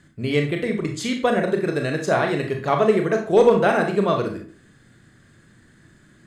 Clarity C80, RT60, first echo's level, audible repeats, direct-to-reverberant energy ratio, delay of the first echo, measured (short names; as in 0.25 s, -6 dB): 12.0 dB, 0.45 s, none, none, 3.0 dB, none